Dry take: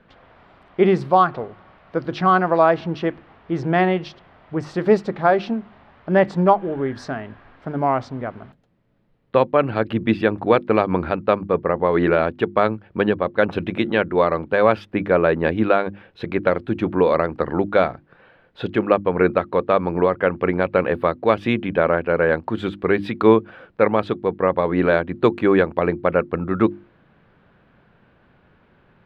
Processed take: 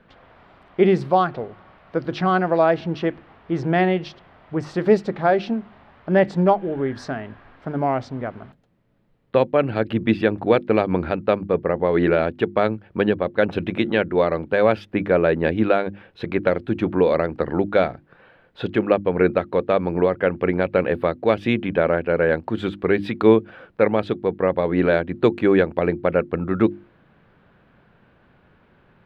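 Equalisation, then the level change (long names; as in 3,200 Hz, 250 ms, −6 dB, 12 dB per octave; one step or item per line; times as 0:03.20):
dynamic equaliser 1,100 Hz, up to −7 dB, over −34 dBFS, Q 2
0.0 dB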